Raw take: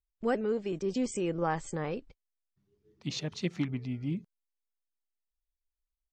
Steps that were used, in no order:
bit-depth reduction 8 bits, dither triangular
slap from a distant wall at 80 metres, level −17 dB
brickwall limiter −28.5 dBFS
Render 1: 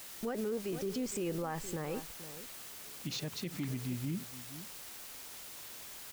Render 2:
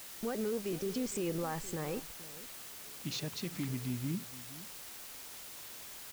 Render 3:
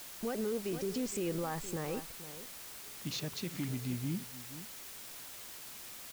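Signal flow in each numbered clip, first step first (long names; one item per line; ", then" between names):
bit-depth reduction, then slap from a distant wall, then brickwall limiter
brickwall limiter, then bit-depth reduction, then slap from a distant wall
slap from a distant wall, then brickwall limiter, then bit-depth reduction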